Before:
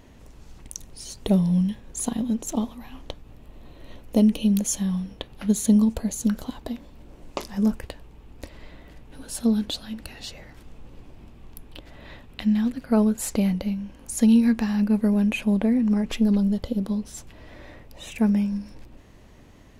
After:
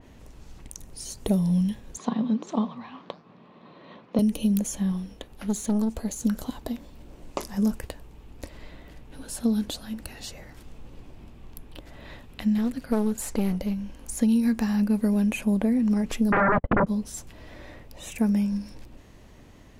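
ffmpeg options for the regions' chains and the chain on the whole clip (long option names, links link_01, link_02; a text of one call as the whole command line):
ffmpeg -i in.wav -filter_complex "[0:a]asettb=1/sr,asplit=3[link_01][link_02][link_03];[link_01]atrim=end=1.974[link_04];[link_02]atrim=start=1.97:end=4.19,asetpts=PTS-STARTPTS,afade=type=in:duration=0.004:curve=qsin,afade=type=out:start_time=2.216:duration=0.004:curve=qsin,highpass=frequency=170:width=0.5412,highpass=frequency=170:width=1.3066,equalizer=frequency=180:width_type=q:width=4:gain=6,equalizer=frequency=290:width_type=q:width=4:gain=-4,equalizer=frequency=1100:width_type=q:width=4:gain=9,equalizer=frequency=2900:width_type=q:width=4:gain=-4,lowpass=frequency=4000:width=0.5412,lowpass=frequency=4000:width=1.3066,acontrast=34,flanger=delay=6.4:depth=8.8:regen=-85:speed=1.6:shape=sinusoidal[link_05];[link_03]atrim=start=4.186[link_06];[link_04][link_05]acrossfade=duration=0.004:curve1=hsin:curve2=qsin[link_07];[link_07][link_06]acrossfade=duration=0.004:curve1=qsin:curve2=hsin,asettb=1/sr,asplit=3[link_08][link_09][link_10];[link_08]atrim=end=4.924[link_11];[link_09]atrim=start=4.92:end=6.22,asetpts=PTS-STARTPTS,afade=type=in:duration=0.004:curve=qsin,afade=type=out:start_time=1.296:duration=0.004:curve=qsin,acrossover=split=8400[link_12][link_13];[link_13]acompressor=threshold=-42dB:ratio=4:attack=1:release=60[link_14];[link_12][link_14]amix=inputs=2:normalize=0,equalizer=frequency=130:width_type=o:width=0.98:gain=-5,aeval=exprs='(tanh(8.91*val(0)+0.4)-tanh(0.4))/8.91':channel_layout=same[link_15];[link_10]atrim=start=6.216[link_16];[link_11][link_15]acrossfade=duration=0.004:curve1=hsin:curve2=qsin[link_17];[link_17][link_16]acrossfade=duration=0.004:curve1=qsin:curve2=hsin,asettb=1/sr,asplit=3[link_18][link_19][link_20];[link_18]atrim=end=12.584[link_21];[link_19]atrim=start=12.58:end=14.18,asetpts=PTS-STARTPTS,afade=type=in:duration=0.004:curve=qsin,afade=type=out:start_time=1.596:duration=0.004:curve=qsin,aeval=exprs='clip(val(0),-1,0.0631)':channel_layout=same,asubboost=boost=3.5:cutoff=63[link_22];[link_20]atrim=start=14.176[link_23];[link_21][link_22]acrossfade=duration=0.004:curve1=hsin:curve2=qsin[link_24];[link_24][link_23]acrossfade=duration=0.004:curve1=qsin:curve2=hsin,asettb=1/sr,asplit=3[link_25][link_26][link_27];[link_25]atrim=end=16.324[link_28];[link_26]atrim=start=16.32:end=16.87,asetpts=PTS-STARTPTS,afade=type=in:duration=0.004:curve=qsin,afade=type=out:start_time=0.546:duration=0.004:curve=qsin,agate=range=-45dB:threshold=-28dB:ratio=16:release=100:detection=peak,aeval=exprs='0.224*sin(PI/2*8.91*val(0)/0.224)':channel_layout=same,lowpass=frequency=1900:width=0.5412,lowpass=frequency=1900:width=1.3066[link_29];[link_27]atrim=start=16.866[link_30];[link_28][link_29]acrossfade=duration=0.004:curve1=hsin:curve2=qsin[link_31];[link_31][link_30]acrossfade=duration=0.004:curve1=qsin:curve2=hsin,acrossover=split=2500|5200[link_32][link_33][link_34];[link_32]acompressor=threshold=-19dB:ratio=4[link_35];[link_33]acompressor=threshold=-58dB:ratio=4[link_36];[link_34]acompressor=threshold=-40dB:ratio=4[link_37];[link_35][link_36][link_37]amix=inputs=3:normalize=0,adynamicequalizer=threshold=0.00251:dfrequency=3300:dqfactor=0.7:tfrequency=3300:tqfactor=0.7:attack=5:release=100:ratio=0.375:range=2.5:mode=boostabove:tftype=highshelf" out.wav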